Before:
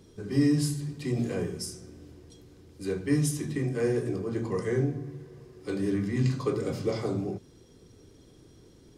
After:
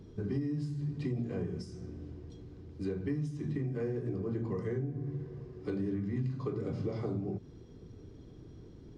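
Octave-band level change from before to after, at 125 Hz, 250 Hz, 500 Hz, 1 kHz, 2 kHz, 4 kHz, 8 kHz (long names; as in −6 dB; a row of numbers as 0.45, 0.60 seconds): −4.5 dB, −6.5 dB, −7.5 dB, −8.5 dB, −11.5 dB, below −15 dB, below −20 dB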